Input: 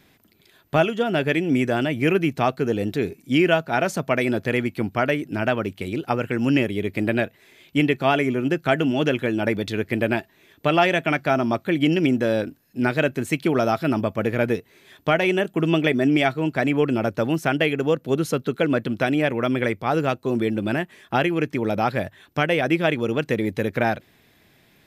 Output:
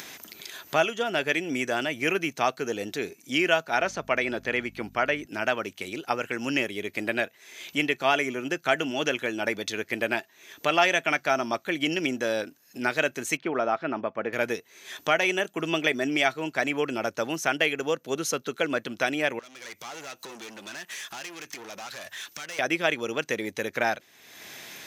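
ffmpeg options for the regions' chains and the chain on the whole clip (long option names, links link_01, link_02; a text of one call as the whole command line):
ffmpeg -i in.wav -filter_complex "[0:a]asettb=1/sr,asplit=3[link_01][link_02][link_03];[link_01]atrim=end=3.794[link_04];[link_02]atrim=start=3.79:end=5.26,asetpts=PTS-STARTPTS,afade=type=in:duration=0.004:curve=qsin,afade=type=out:start_time=1.466:duration=0.004:curve=qsin,acrossover=split=4400[link_05][link_06];[link_06]acompressor=threshold=-57dB:ratio=4:attack=1:release=60[link_07];[link_05][link_07]amix=inputs=2:normalize=0,aeval=exprs='val(0)+0.0251*(sin(2*PI*50*n/s)+sin(2*PI*2*50*n/s)/2+sin(2*PI*3*50*n/s)/3+sin(2*PI*4*50*n/s)/4+sin(2*PI*5*50*n/s)/5)':channel_layout=same[link_08];[link_03]atrim=start=5.256[link_09];[link_04][link_08]acrossfade=duration=0.004:curve1=hsin:curve2=qsin[link_10];[link_10][link_09]acrossfade=duration=0.004:curve1=qsin:curve2=hsin,asettb=1/sr,asplit=3[link_11][link_12][link_13];[link_11]atrim=end=13.374[link_14];[link_12]atrim=start=13.37:end=14.33,asetpts=PTS-STARTPTS,afade=type=in:duration=0.004:curve=qsin,afade=type=out:start_time=0.956:duration=0.004:curve=qsin,lowpass=1900,equalizer=frequency=75:width=1.4:gain=-10.5[link_15];[link_13]atrim=start=14.326[link_16];[link_14][link_15]acrossfade=duration=0.004:curve1=hsin:curve2=qsin[link_17];[link_17][link_16]acrossfade=duration=0.004:curve1=qsin:curve2=hsin,asettb=1/sr,asplit=3[link_18][link_19][link_20];[link_18]atrim=end=19.394[link_21];[link_19]atrim=start=19.39:end=22.59,asetpts=PTS-STARTPTS,afade=type=in:duration=0.004:curve=qsin,afade=type=out:start_time=3.196:duration=0.004:curve=qsin,tiltshelf=frequency=1200:gain=-6,acompressor=threshold=-39dB:ratio=2.5:attack=3.2:release=140:knee=1:detection=peak,aeval=exprs='(tanh(141*val(0)+0.45)-tanh(0.45))/141':channel_layout=same[link_22];[link_20]atrim=start=22.586[link_23];[link_21][link_22]acrossfade=duration=0.004:curve1=hsin:curve2=qsin[link_24];[link_24][link_23]acrossfade=duration=0.004:curve1=qsin:curve2=hsin,equalizer=frequency=6200:width=3.5:gain=10.5,acompressor=mode=upward:threshold=-25dB:ratio=2.5,highpass=frequency=850:poles=1" out.wav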